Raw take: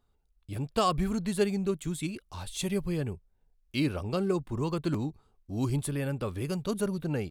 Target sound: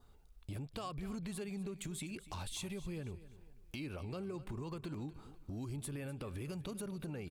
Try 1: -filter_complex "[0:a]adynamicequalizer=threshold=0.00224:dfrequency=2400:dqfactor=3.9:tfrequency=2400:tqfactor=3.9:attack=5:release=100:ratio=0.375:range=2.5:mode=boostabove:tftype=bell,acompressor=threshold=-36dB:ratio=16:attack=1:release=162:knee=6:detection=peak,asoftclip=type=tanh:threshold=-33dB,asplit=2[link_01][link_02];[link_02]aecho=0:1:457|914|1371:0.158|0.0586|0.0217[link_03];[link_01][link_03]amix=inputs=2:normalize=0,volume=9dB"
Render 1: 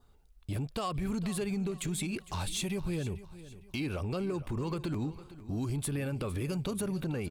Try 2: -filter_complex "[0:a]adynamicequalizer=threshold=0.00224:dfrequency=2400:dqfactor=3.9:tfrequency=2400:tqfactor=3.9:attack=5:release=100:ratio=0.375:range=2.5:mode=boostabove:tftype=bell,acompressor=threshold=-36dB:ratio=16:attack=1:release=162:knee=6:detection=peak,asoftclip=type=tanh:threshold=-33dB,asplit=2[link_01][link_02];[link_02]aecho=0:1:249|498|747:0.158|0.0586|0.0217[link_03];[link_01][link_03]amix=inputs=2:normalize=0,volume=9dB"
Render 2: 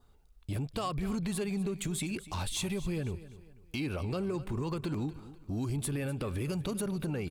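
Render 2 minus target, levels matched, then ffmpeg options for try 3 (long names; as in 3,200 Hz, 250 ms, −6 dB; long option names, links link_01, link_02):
downward compressor: peak gain reduction −10 dB
-filter_complex "[0:a]adynamicequalizer=threshold=0.00224:dfrequency=2400:dqfactor=3.9:tfrequency=2400:tqfactor=3.9:attack=5:release=100:ratio=0.375:range=2.5:mode=boostabove:tftype=bell,acompressor=threshold=-46.5dB:ratio=16:attack=1:release=162:knee=6:detection=peak,asoftclip=type=tanh:threshold=-33dB,asplit=2[link_01][link_02];[link_02]aecho=0:1:249|498|747:0.158|0.0586|0.0217[link_03];[link_01][link_03]amix=inputs=2:normalize=0,volume=9dB"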